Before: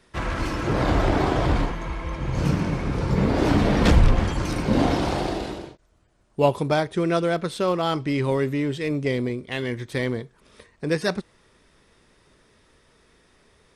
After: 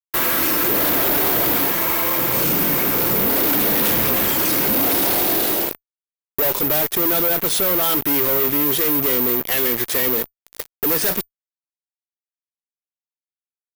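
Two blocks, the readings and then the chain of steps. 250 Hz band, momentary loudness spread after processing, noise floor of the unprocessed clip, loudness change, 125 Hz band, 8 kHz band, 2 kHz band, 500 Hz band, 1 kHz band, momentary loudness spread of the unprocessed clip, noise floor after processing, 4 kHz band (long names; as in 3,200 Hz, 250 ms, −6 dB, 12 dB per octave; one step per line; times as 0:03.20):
−0.5 dB, 5 LU, −60 dBFS, +7.5 dB, −8.5 dB, +18.0 dB, +5.5 dB, +1.0 dB, +2.0 dB, 9 LU, below −85 dBFS, +8.5 dB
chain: high-pass filter 330 Hz 12 dB per octave
dynamic equaliser 870 Hz, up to −6 dB, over −37 dBFS, Q 0.77
in parallel at −2 dB: downward compressor, threshold −41 dBFS, peak gain reduction 21 dB
on the sum: fuzz pedal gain 46 dB, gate −41 dBFS
bad sample-rate conversion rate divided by 3×, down none, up zero stuff
level −8 dB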